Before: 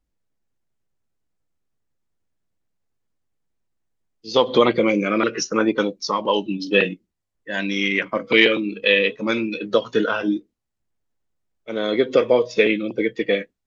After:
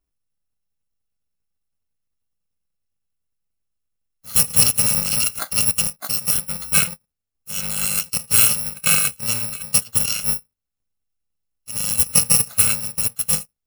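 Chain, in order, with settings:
samples in bit-reversed order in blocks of 128 samples
in parallel at −7 dB: centre clipping without the shift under −17.5 dBFS
on the sum: level −2.5 dB

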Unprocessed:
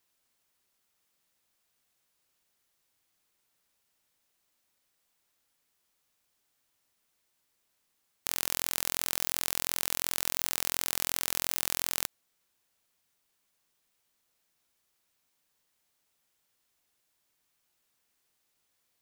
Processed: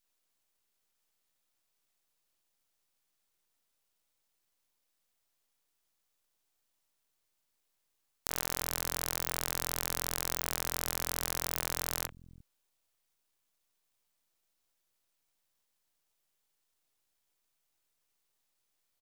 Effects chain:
three-band delay without the direct sound highs, mids, lows 40/350 ms, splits 190/1,800 Hz
half-wave rectification

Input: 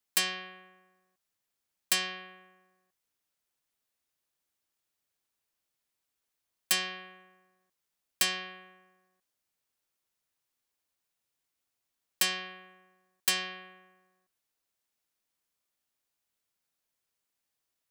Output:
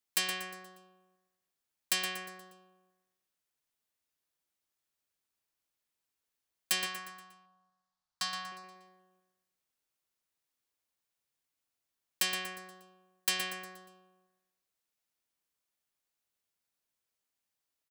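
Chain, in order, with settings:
0:06.86–0:08.52: drawn EQ curve 160 Hz 0 dB, 390 Hz −23 dB, 820 Hz +3 dB, 1,200 Hz +4 dB, 2,400 Hz −11 dB, 4,400 Hz +1 dB, 14,000 Hz −17 dB
repeating echo 119 ms, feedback 47%, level −9 dB
level −3.5 dB

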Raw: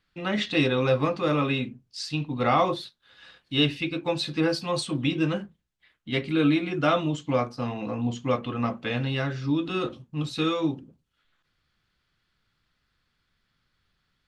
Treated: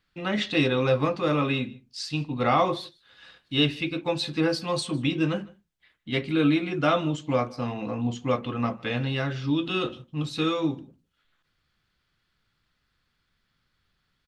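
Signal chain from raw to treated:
0:09.31–0:10.03: parametric band 3,100 Hz +8.5 dB 0.48 octaves
single-tap delay 154 ms −24 dB

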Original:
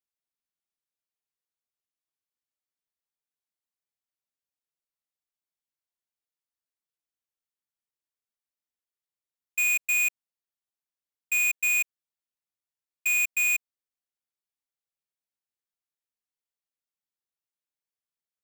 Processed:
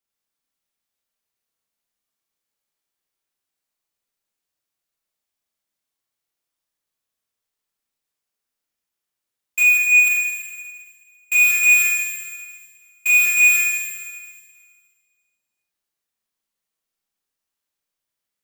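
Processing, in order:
0:09.63–0:10.07: spectral envelope exaggerated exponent 1.5
four-comb reverb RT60 1.8 s, combs from 28 ms, DRR −4 dB
level +4.5 dB

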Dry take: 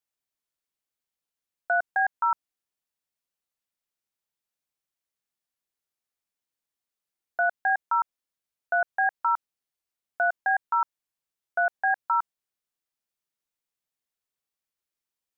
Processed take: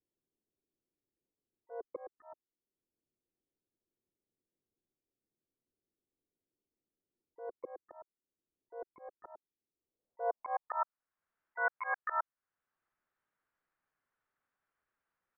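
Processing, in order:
pitch-shifted copies added −7 semitones −5 dB, −5 semitones −11 dB, +5 semitones −9 dB
volume swells 747 ms
low-pass filter sweep 360 Hz → 1,500 Hz, 0:09.79–0:11.01
level +3.5 dB

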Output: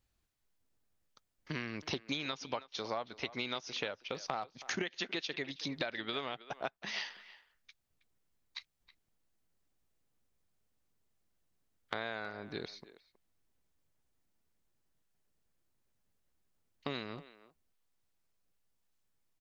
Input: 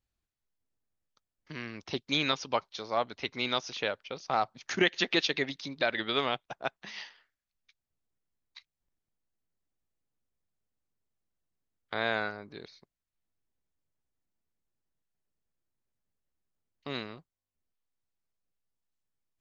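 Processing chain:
downward compressor 12 to 1, threshold −40 dBFS, peak gain reduction 20.5 dB
far-end echo of a speakerphone 320 ms, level −16 dB
level +6 dB

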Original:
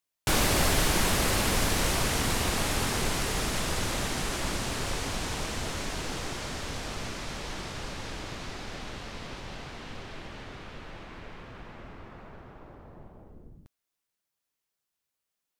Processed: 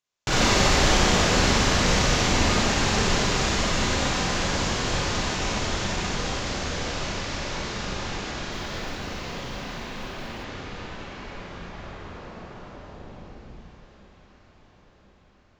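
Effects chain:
on a send: delay that swaps between a low-pass and a high-pass 521 ms, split 1,100 Hz, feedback 75%, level −11 dB
on the sum: downsampling to 16,000 Hz
harmonic generator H 4 −27 dB, 6 −23 dB, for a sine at −12 dBFS
four-comb reverb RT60 1.2 s, combs from 31 ms, DRR −5 dB
0:08.51–0:10.44: noise that follows the level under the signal 29 dB

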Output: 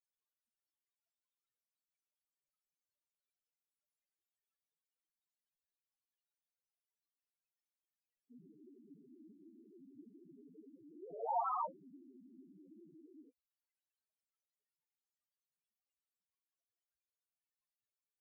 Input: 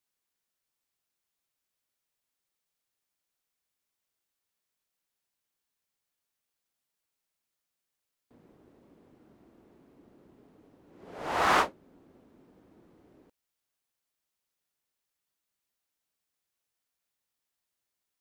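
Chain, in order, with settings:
brickwall limiter −22.5 dBFS, peak gain reduction 10 dB
spectral peaks only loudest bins 2
level +6.5 dB

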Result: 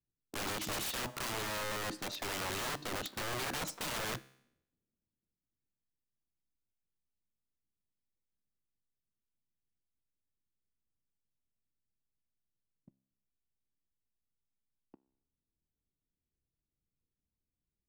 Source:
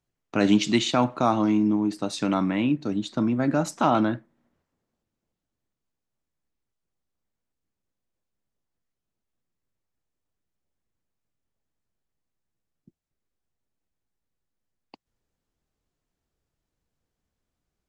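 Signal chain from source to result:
low-pass that shuts in the quiet parts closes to 350 Hz, open at −21.5 dBFS
downward compressor 12 to 1, threshold −24 dBFS, peak gain reduction 11 dB
leveller curve on the samples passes 1
wrap-around overflow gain 25.5 dB
tuned comb filter 66 Hz, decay 0.73 s, harmonics all, mix 40%
level −3 dB

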